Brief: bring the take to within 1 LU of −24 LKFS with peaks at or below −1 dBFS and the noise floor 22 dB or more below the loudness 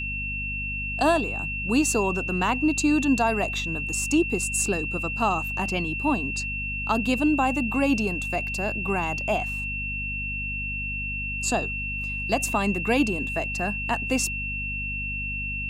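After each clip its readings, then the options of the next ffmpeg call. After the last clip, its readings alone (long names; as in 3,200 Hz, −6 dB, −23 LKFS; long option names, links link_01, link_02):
mains hum 50 Hz; hum harmonics up to 250 Hz; level of the hum −32 dBFS; interfering tone 2,700 Hz; level of the tone −29 dBFS; integrated loudness −25.0 LKFS; sample peak −9.5 dBFS; target loudness −24.0 LKFS
→ -af "bandreject=frequency=50:width_type=h:width=6,bandreject=frequency=100:width_type=h:width=6,bandreject=frequency=150:width_type=h:width=6,bandreject=frequency=200:width_type=h:width=6,bandreject=frequency=250:width_type=h:width=6"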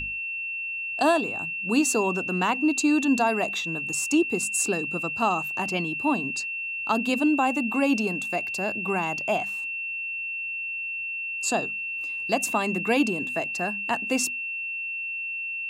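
mains hum none found; interfering tone 2,700 Hz; level of the tone −29 dBFS
→ -af "bandreject=frequency=2700:width=30"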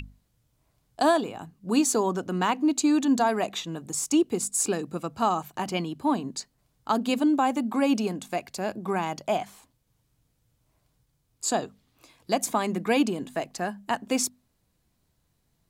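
interfering tone none found; integrated loudness −26.5 LKFS; sample peak −10.0 dBFS; target loudness −24.0 LKFS
→ -af "volume=2.5dB"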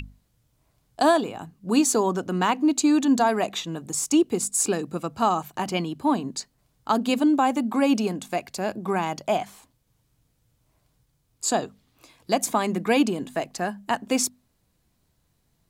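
integrated loudness −24.0 LKFS; sample peak −7.5 dBFS; background noise floor −70 dBFS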